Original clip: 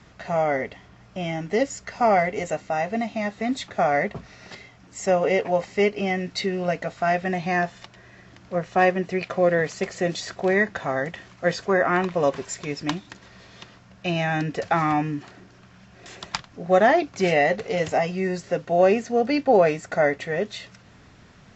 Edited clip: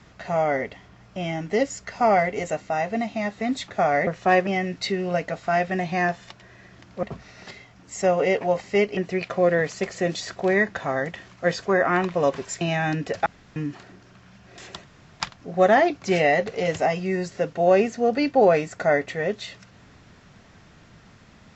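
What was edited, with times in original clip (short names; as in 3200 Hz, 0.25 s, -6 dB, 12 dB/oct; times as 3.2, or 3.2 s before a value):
4.07–6.01 swap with 8.57–8.97
12.61–14.09 cut
14.74–15.04 room tone
16.32 insert room tone 0.36 s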